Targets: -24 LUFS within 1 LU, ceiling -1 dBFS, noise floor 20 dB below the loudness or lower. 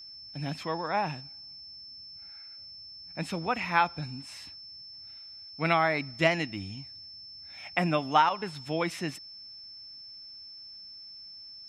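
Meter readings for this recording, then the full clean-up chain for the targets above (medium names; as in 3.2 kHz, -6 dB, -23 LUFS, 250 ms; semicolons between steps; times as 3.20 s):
steady tone 5.3 kHz; tone level -44 dBFS; loudness -29.5 LUFS; peak level -8.5 dBFS; loudness target -24.0 LUFS
-> band-stop 5.3 kHz, Q 30; trim +5.5 dB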